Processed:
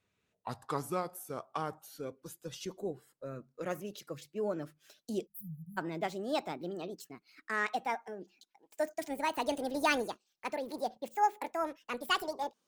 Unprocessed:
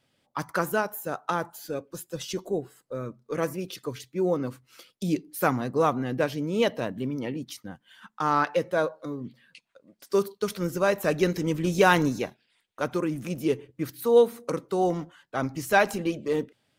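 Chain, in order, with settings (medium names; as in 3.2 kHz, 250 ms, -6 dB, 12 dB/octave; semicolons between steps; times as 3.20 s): gliding tape speed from 76% -> 189%; spectral selection erased 5.27–5.78 s, 200–10000 Hz; trim -9 dB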